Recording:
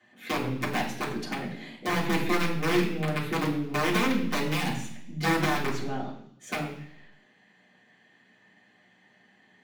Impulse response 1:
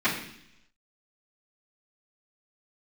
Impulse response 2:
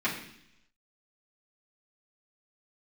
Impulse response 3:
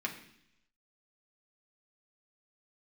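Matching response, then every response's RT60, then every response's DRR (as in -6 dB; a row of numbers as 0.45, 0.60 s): 2; 0.70, 0.70, 0.70 s; -16.0, -9.5, -0.5 dB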